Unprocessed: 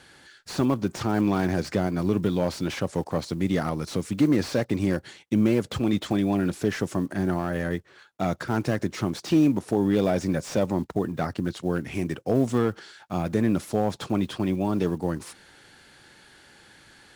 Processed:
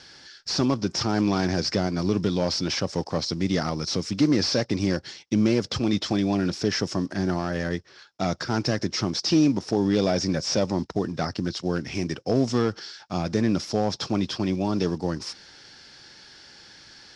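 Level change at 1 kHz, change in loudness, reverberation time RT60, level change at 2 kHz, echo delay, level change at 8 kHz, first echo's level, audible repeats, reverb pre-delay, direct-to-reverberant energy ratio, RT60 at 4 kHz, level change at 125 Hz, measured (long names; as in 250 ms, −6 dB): 0.0 dB, +0.5 dB, no reverb audible, +1.0 dB, no echo audible, +6.5 dB, no echo audible, no echo audible, no reverb audible, no reverb audible, no reverb audible, 0.0 dB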